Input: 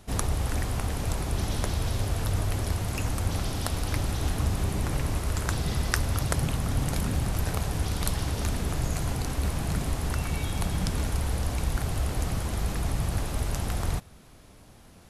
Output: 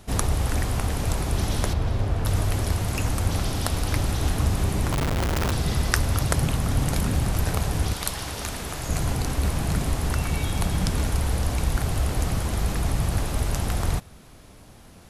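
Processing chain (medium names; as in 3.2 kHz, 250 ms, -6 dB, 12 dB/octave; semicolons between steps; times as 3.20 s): 1.73–2.25 s: low-pass 1.6 kHz 6 dB/octave; 4.92–5.52 s: Schmitt trigger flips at -37.5 dBFS; 7.93–8.89 s: bass shelf 380 Hz -11 dB; trim +4 dB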